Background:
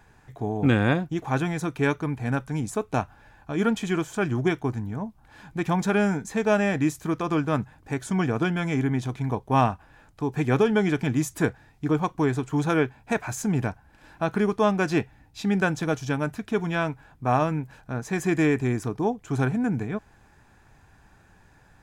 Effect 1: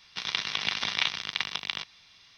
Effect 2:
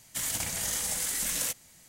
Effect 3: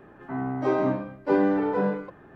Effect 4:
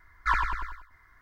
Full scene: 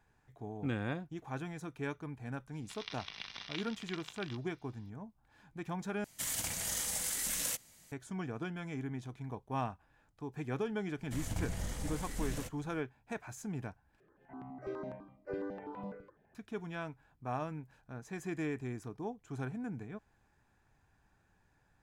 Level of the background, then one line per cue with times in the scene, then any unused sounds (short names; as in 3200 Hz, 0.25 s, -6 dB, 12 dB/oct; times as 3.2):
background -15.5 dB
2.53 add 1 -16.5 dB
6.04 replace with 2 -5 dB
10.96 add 2 -7 dB, fades 0.05 s + tilt -4 dB/oct
14 replace with 3 -15.5 dB + step phaser 12 Hz 240–1600 Hz
not used: 4